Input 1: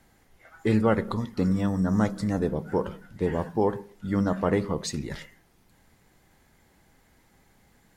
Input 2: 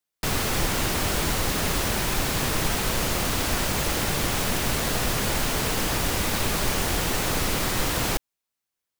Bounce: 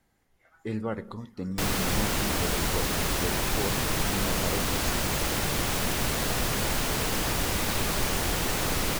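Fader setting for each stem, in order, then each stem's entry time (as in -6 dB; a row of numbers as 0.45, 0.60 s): -9.5, -2.5 dB; 0.00, 1.35 s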